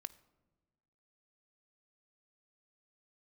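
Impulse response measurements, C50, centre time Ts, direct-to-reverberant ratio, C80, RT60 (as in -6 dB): 18.5 dB, 2 ms, 17.0 dB, 21.5 dB, 1.3 s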